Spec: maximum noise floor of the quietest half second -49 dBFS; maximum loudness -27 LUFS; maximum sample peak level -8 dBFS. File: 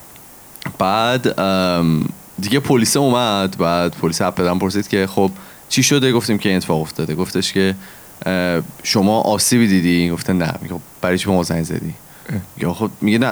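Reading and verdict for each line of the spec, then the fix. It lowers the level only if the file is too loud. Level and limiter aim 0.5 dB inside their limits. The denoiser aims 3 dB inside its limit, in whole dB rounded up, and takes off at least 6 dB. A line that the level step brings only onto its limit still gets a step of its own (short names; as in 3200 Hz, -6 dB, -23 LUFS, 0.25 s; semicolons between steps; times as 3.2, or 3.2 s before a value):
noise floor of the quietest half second -41 dBFS: fail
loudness -17.0 LUFS: fail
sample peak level -3.0 dBFS: fail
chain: gain -10.5 dB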